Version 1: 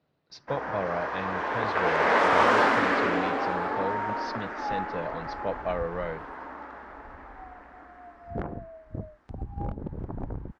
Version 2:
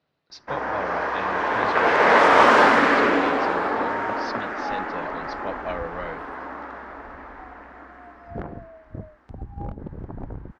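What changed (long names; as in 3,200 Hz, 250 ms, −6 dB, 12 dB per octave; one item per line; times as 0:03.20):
speech: add tilt shelving filter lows −4 dB, about 860 Hz
first sound +6.5 dB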